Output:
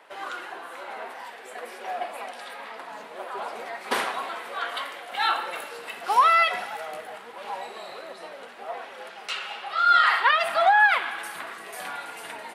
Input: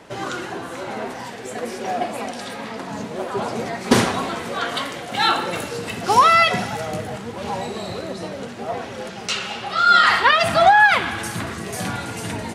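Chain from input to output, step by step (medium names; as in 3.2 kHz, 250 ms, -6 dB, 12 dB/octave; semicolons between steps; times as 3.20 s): high-pass 730 Hz 12 dB/octave; peaking EQ 6.3 kHz -12.5 dB 1.1 oct; trim -3.5 dB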